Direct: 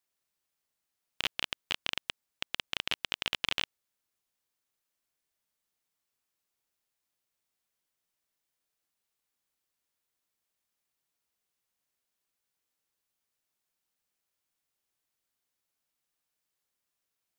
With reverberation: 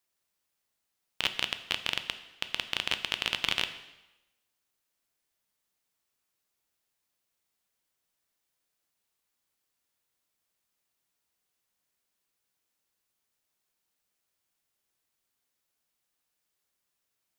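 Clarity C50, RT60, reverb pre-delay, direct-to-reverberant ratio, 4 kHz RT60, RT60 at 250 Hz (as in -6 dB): 12.0 dB, 1.0 s, 4 ms, 9.0 dB, 0.95 s, 0.95 s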